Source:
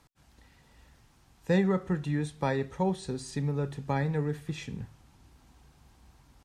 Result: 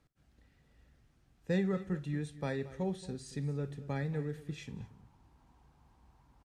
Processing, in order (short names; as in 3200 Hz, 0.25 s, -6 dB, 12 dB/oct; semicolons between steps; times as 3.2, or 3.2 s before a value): bell 940 Hz -10 dB 0.52 oct, from 4.67 s +6.5 dB; tapped delay 56/227 ms -19.5/-16.5 dB; mismatched tape noise reduction decoder only; gain -6 dB